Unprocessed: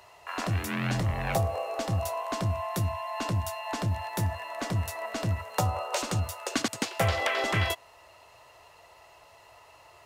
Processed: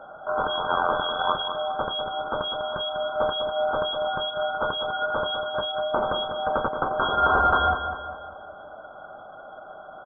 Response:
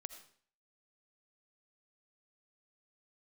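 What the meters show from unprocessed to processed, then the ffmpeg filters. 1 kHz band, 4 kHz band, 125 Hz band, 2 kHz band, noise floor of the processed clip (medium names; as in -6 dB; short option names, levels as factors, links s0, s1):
+9.0 dB, +8.5 dB, -12.5 dB, +5.0 dB, -44 dBFS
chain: -af "aemphasis=mode=reproduction:type=cd,afftfilt=real='re*(1-between(b*sr/4096,110,1800))':imag='im*(1-between(b*sr/4096,110,1800))':win_size=4096:overlap=0.75,adynamicequalizer=threshold=0.00158:dfrequency=470:dqfactor=1.7:tfrequency=470:tqfactor=1.7:attack=5:release=100:ratio=0.375:range=1.5:mode=boostabove:tftype=bell,alimiter=level_in=1.58:limit=0.0631:level=0:latency=1:release=153,volume=0.631,aexciter=amount=5.8:drive=9.9:freq=2000,lowpass=f=2900:t=q:w=0.5098,lowpass=f=2900:t=q:w=0.6013,lowpass=f=2900:t=q:w=0.9,lowpass=f=2900:t=q:w=2.563,afreqshift=-3400,aecho=1:1:199|398|597|796|995:0.376|0.169|0.0761|0.0342|0.0154,aeval=exprs='0.316*(cos(1*acos(clip(val(0)/0.316,-1,1)))-cos(1*PI/2))+0.00501*(cos(3*acos(clip(val(0)/0.316,-1,1)))-cos(3*PI/2))':c=same,volume=1.26"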